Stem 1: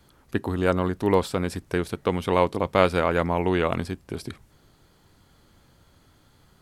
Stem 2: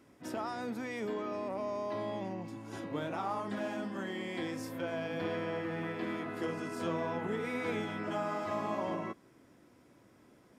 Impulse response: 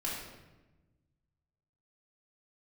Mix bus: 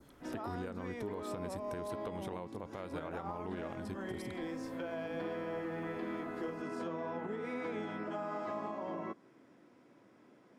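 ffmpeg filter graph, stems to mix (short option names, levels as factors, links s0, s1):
-filter_complex "[0:a]acompressor=threshold=0.0447:ratio=4,bandreject=f=4600:w=12,volume=0.531[s0];[1:a]highpass=170,aemphasis=mode=reproduction:type=50fm,volume=1[s1];[s0][s1]amix=inputs=2:normalize=0,adynamicequalizer=threshold=0.002:dfrequency=2700:dqfactor=1.1:tfrequency=2700:tqfactor=1.1:attack=5:release=100:ratio=0.375:range=2:mode=cutabove:tftype=bell,alimiter=level_in=2.11:limit=0.0631:level=0:latency=1:release=208,volume=0.473"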